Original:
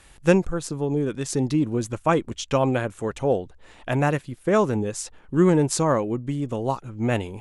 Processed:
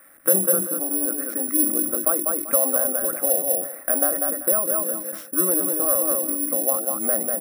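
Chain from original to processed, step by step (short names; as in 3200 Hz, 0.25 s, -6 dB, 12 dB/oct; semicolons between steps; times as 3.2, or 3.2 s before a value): dynamic EQ 250 Hz, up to -7 dB, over -35 dBFS, Q 1.6; HPF 120 Hz 6 dB/oct; bell 600 Hz +8 dB 2.8 oct; notches 50/100/150/200/250/300/350 Hz; feedback echo 0.194 s, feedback 15%, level -6 dB; compressor 6:1, threshold -17 dBFS, peak gain reduction 9.5 dB; fixed phaser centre 630 Hz, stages 8; reverb RT60 0.15 s, pre-delay 3 ms, DRR 15.5 dB; treble ducked by the level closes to 1200 Hz, closed at -18 dBFS; careless resampling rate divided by 4×, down none, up zero stuff; sustainer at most 80 dB/s; gain -9 dB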